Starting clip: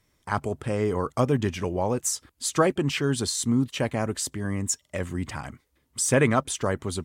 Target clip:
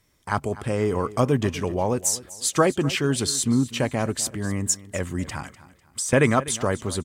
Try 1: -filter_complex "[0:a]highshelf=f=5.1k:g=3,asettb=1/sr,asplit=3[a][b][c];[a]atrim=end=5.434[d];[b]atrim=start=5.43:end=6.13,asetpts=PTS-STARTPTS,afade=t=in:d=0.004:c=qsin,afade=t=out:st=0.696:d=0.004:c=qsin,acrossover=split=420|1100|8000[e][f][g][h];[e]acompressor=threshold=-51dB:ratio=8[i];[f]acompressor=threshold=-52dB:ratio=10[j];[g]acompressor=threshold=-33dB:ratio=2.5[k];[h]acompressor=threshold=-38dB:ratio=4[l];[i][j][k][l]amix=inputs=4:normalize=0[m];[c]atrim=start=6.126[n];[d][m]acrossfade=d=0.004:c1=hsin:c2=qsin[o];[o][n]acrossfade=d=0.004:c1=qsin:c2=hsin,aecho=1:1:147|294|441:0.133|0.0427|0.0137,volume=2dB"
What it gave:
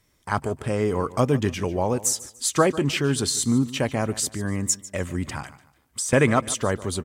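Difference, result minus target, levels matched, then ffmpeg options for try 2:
echo 0.102 s early
-filter_complex "[0:a]highshelf=f=5.1k:g=3,asettb=1/sr,asplit=3[a][b][c];[a]atrim=end=5.434[d];[b]atrim=start=5.43:end=6.13,asetpts=PTS-STARTPTS,afade=t=in:d=0.004:c=qsin,afade=t=out:st=0.696:d=0.004:c=qsin,acrossover=split=420|1100|8000[e][f][g][h];[e]acompressor=threshold=-51dB:ratio=8[i];[f]acompressor=threshold=-52dB:ratio=10[j];[g]acompressor=threshold=-33dB:ratio=2.5[k];[h]acompressor=threshold=-38dB:ratio=4[l];[i][j][k][l]amix=inputs=4:normalize=0[m];[c]atrim=start=6.126[n];[d][m]acrossfade=d=0.004:c1=hsin:c2=qsin[o];[o][n]acrossfade=d=0.004:c1=qsin:c2=hsin,aecho=1:1:249|498|747:0.133|0.0427|0.0137,volume=2dB"

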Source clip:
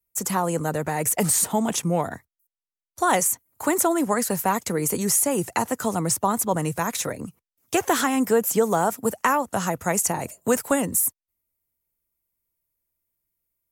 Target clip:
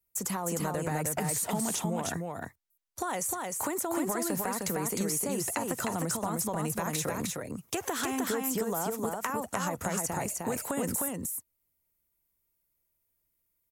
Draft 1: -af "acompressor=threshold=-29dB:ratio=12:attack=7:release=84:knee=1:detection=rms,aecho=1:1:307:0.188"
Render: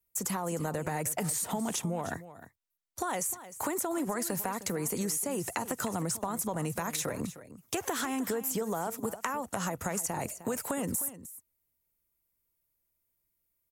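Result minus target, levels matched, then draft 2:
echo-to-direct -11.5 dB
-af "acompressor=threshold=-29dB:ratio=12:attack=7:release=84:knee=1:detection=rms,aecho=1:1:307:0.708"

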